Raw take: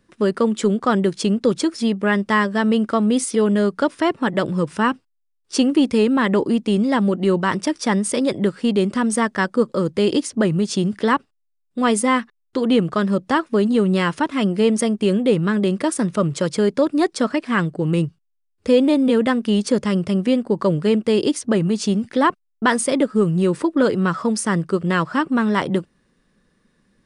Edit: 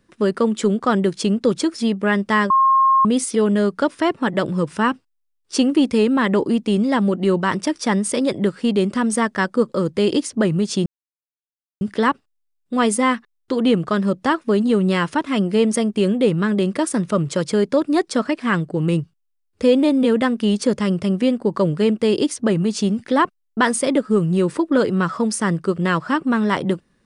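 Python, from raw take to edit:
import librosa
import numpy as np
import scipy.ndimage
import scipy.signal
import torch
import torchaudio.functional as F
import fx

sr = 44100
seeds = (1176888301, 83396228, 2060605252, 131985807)

y = fx.edit(x, sr, fx.bleep(start_s=2.5, length_s=0.55, hz=1070.0, db=-11.0),
    fx.insert_silence(at_s=10.86, length_s=0.95), tone=tone)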